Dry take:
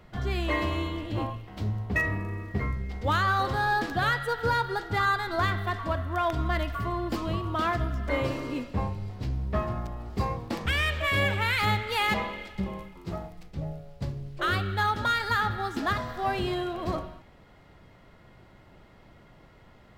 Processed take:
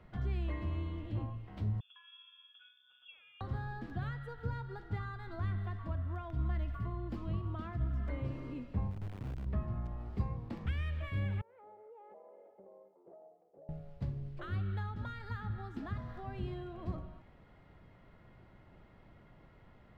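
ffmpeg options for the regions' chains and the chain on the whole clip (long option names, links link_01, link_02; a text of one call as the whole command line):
ffmpeg -i in.wav -filter_complex "[0:a]asettb=1/sr,asplit=3[link_01][link_02][link_03];[link_01]atrim=end=1.804[link_04];[link_02]atrim=start=1.8:end=3.41,asetpts=PTS-STARTPTS,afade=type=in:duration=0.004:curve=qsin,afade=type=out:start_time=1.606:duration=0.004:curve=qsin,acompressor=threshold=-30dB:ratio=6:attack=3.2:release=140:knee=1:detection=peak,asplit=3[link_05][link_06][link_07];[link_05]bandpass=frequency=300:width_type=q:width=8,volume=0dB[link_08];[link_06]bandpass=frequency=870:width_type=q:width=8,volume=-6dB[link_09];[link_07]bandpass=frequency=2240:width_type=q:width=8,volume=-9dB[link_10];[link_08][link_09][link_10]amix=inputs=3:normalize=0,lowpass=frequency=3100:width_type=q:width=0.5098,lowpass=frequency=3100:width_type=q:width=0.6013,lowpass=frequency=3100:width_type=q:width=0.9,lowpass=frequency=3100:width_type=q:width=2.563,afreqshift=-3600[link_11];[link_03]atrim=start=3.406[link_12];[link_04][link_11]acrossfade=duration=0.004:curve1=hsin:curve2=qsin[link_13];[link_13][link_12]acrossfade=duration=0.004:curve1=qsin:curve2=hsin,asettb=1/sr,asplit=3[link_14][link_15][link_16];[link_14]atrim=end=8.914[link_17];[link_15]atrim=start=8.91:end=9.46,asetpts=PTS-STARTPTS,afade=type=in:duration=0.004:curve=qsin,afade=type=out:start_time=0.546:duration=0.004:curve=qsin,lowpass=1000,acompressor=threshold=-32dB:ratio=16:attack=3.2:release=140:knee=1:detection=peak,acrusher=bits=7:dc=4:mix=0:aa=0.000001[link_18];[link_16]atrim=start=9.456[link_19];[link_17][link_18]acrossfade=duration=0.004:curve1=hsin:curve2=qsin[link_20];[link_20][link_19]acrossfade=duration=0.004:curve1=qsin:curve2=hsin,asettb=1/sr,asplit=3[link_21][link_22][link_23];[link_21]atrim=end=11.414[link_24];[link_22]atrim=start=11.41:end=13.69,asetpts=PTS-STARTPTS,afade=type=in:duration=0.004:curve=qsin,afade=type=out:start_time=2.276:duration=0.004:curve=qsin,asuperpass=centerf=550:order=4:qfactor=1.8,acompressor=threshold=-46dB:ratio=5:attack=3.2:release=140:knee=1:detection=peak[link_25];[link_23]atrim=start=13.686[link_26];[link_24][link_25]acrossfade=duration=0.004:curve1=hsin:curve2=qsin[link_27];[link_27][link_26]acrossfade=duration=0.004:curve1=qsin:curve2=hsin,bass=frequency=250:gain=3,treble=frequency=4000:gain=-11,acrossover=split=240[link_28][link_29];[link_29]acompressor=threshold=-43dB:ratio=3[link_30];[link_28][link_30]amix=inputs=2:normalize=0,volume=-7dB" out.wav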